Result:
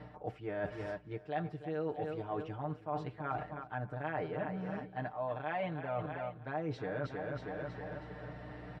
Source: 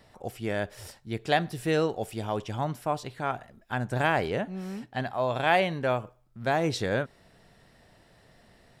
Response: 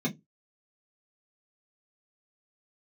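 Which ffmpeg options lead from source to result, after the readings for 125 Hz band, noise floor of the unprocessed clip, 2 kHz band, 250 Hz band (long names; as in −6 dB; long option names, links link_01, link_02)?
−8.0 dB, −60 dBFS, −12.5 dB, −8.5 dB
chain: -af "lowpass=1700,aeval=exprs='val(0)+0.002*(sin(2*PI*60*n/s)+sin(2*PI*2*60*n/s)/2+sin(2*PI*3*60*n/s)/3+sin(2*PI*4*60*n/s)/4+sin(2*PI*5*60*n/s)/5)':channel_layout=same,aecho=1:1:6.6:0.95,aecho=1:1:319|638|957|1276:0.224|0.0963|0.0414|0.0178,areverse,acompressor=threshold=-45dB:ratio=6,areverse,highpass=64,equalizer=frequency=130:width_type=o:width=2.5:gain=-3,volume=9dB"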